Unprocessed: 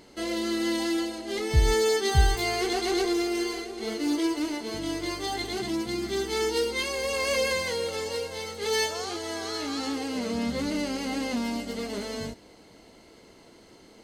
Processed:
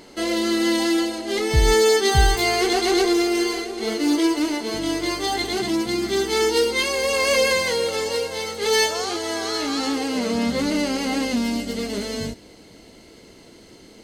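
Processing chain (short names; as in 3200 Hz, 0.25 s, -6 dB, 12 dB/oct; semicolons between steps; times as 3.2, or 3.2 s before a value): bell 79 Hz -6 dB 1.6 oct, from 11.25 s 960 Hz; gain +7.5 dB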